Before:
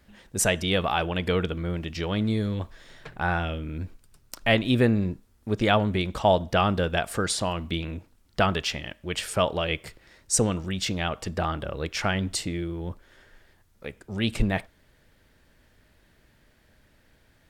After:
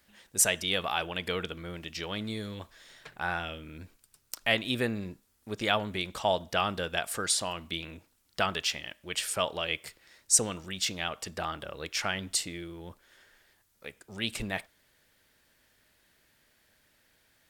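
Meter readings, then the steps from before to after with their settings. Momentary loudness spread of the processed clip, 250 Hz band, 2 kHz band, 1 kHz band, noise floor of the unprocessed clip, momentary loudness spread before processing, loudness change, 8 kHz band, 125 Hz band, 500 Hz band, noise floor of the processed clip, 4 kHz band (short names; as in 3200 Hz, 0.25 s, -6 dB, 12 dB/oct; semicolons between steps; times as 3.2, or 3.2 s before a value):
19 LU, -11.0 dB, -3.0 dB, -6.0 dB, -62 dBFS, 15 LU, -4.0 dB, +2.0 dB, -13.0 dB, -7.5 dB, -70 dBFS, -1.0 dB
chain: tilt +2.5 dB/oct; gain -5.5 dB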